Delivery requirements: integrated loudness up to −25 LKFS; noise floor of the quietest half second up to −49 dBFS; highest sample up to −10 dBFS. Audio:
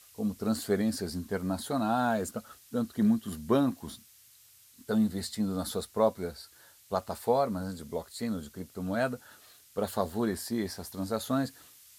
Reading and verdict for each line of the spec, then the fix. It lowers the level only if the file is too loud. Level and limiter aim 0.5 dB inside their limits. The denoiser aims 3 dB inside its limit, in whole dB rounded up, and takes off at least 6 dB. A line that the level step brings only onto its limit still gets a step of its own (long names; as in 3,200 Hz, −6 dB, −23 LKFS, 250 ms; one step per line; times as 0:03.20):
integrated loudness −31.5 LKFS: in spec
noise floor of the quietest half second −59 dBFS: in spec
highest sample −12.5 dBFS: in spec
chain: no processing needed